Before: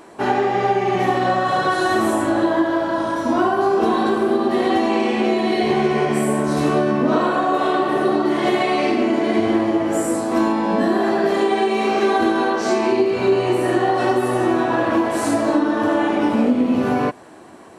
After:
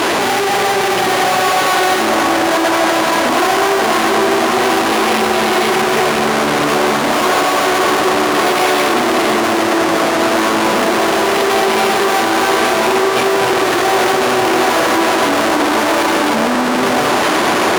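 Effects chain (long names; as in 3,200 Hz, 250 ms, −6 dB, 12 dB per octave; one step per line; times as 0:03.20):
linear delta modulator 16 kbit/s, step −21.5 dBFS
fuzz pedal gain 46 dB, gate −46 dBFS
high-pass filter 280 Hz 6 dB per octave
on a send: delay with a band-pass on its return 535 ms, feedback 84%, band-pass 830 Hz, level −6 dB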